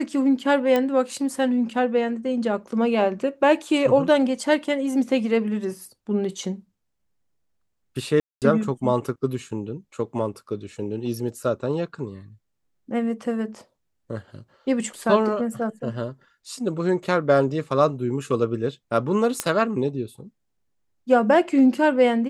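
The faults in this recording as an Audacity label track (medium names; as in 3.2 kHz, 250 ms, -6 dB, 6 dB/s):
0.760000	0.760000	pop -10 dBFS
8.200000	8.420000	dropout 218 ms
19.400000	19.400000	pop -7 dBFS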